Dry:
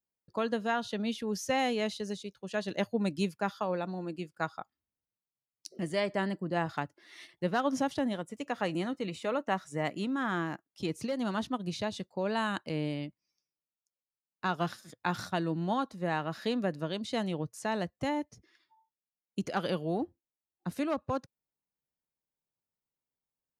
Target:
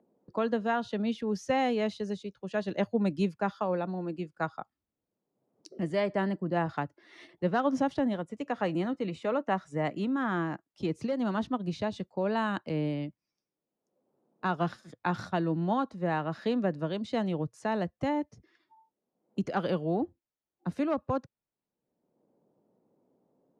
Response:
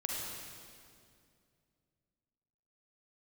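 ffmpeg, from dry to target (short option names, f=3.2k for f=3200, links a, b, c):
-filter_complex "[0:a]lowpass=8.1k,highshelf=f=2.4k:g=-10.5,acrossover=split=180|670|4800[a][b][c][d];[b]acompressor=mode=upward:threshold=-49dB:ratio=2.5[e];[a][e][c][d]amix=inputs=4:normalize=0,volume=3dB"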